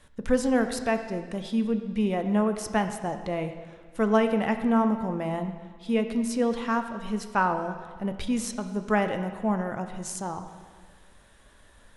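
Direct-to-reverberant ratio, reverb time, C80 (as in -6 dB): 7.0 dB, 1.6 s, 10.0 dB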